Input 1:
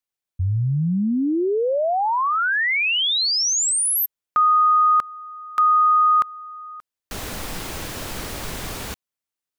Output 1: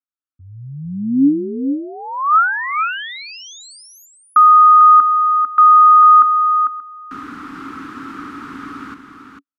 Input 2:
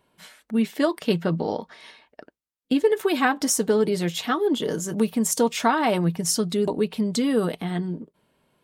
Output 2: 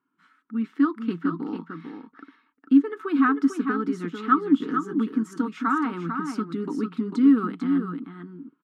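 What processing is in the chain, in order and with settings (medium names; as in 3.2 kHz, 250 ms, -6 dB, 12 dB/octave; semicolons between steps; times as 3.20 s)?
level rider gain up to 11.5 dB; two resonant band-passes 600 Hz, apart 2.2 oct; delay 447 ms -7 dB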